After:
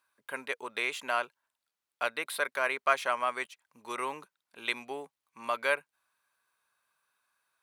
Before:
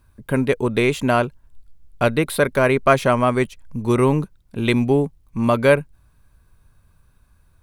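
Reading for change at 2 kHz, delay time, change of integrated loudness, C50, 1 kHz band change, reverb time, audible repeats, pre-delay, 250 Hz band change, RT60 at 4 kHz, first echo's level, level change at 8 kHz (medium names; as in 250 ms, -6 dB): -7.5 dB, no echo, -13.5 dB, no reverb, -9.5 dB, no reverb, no echo, no reverb, -28.5 dB, no reverb, no echo, -10.0 dB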